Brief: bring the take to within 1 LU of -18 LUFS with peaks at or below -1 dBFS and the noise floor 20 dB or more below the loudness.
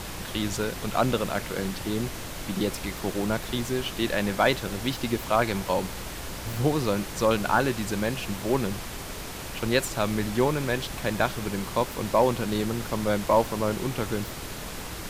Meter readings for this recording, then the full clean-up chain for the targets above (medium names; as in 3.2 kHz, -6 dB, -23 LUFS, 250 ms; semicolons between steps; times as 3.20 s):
hum 60 Hz; highest harmonic 180 Hz; hum level -45 dBFS; noise floor -37 dBFS; noise floor target -48 dBFS; loudness -27.5 LUFS; peak level -9.5 dBFS; loudness target -18.0 LUFS
-> de-hum 60 Hz, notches 3; noise print and reduce 11 dB; trim +9.5 dB; peak limiter -1 dBFS